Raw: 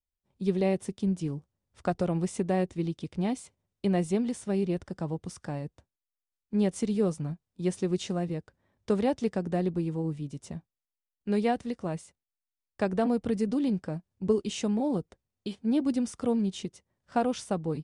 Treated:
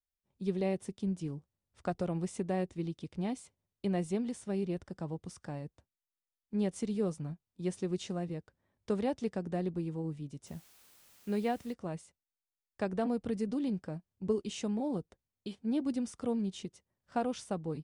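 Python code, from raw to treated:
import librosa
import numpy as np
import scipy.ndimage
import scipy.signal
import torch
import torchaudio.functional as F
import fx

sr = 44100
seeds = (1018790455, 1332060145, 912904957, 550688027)

y = fx.dmg_noise_colour(x, sr, seeds[0], colour='white', level_db=-56.0, at=(10.46, 11.72), fade=0.02)
y = y * librosa.db_to_amplitude(-6.0)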